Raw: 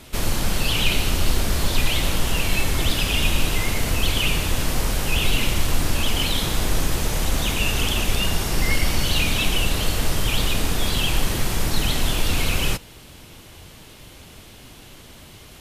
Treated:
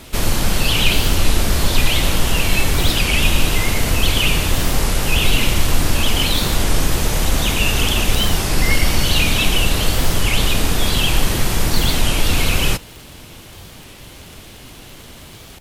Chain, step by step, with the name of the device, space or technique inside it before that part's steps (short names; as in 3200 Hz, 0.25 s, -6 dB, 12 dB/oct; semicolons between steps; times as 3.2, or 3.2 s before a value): warped LP (record warp 33 1/3 rpm, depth 160 cents; crackle 42/s -34 dBFS; pink noise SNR 39 dB); gain +5 dB